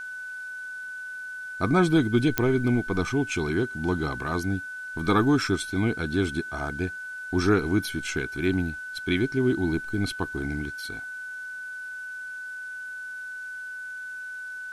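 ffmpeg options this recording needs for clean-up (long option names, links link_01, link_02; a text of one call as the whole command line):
ffmpeg -i in.wav -af "adeclick=threshold=4,bandreject=frequency=1500:width=30,agate=range=-21dB:threshold=-29dB" out.wav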